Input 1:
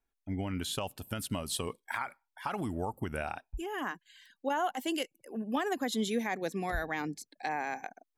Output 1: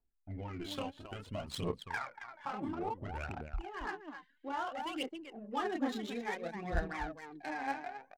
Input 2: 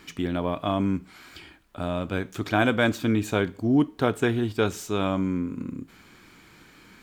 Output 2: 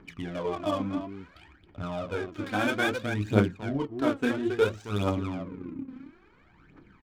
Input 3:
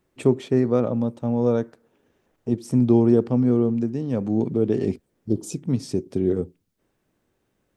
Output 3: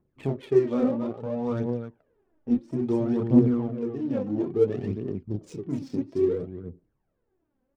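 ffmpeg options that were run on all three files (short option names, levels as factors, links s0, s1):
-af "aecho=1:1:29.15|271.1:0.708|0.447,aphaser=in_gain=1:out_gain=1:delay=4:decay=0.68:speed=0.59:type=triangular,adynamicsmooth=sensitivity=5:basefreq=1400,volume=0.398"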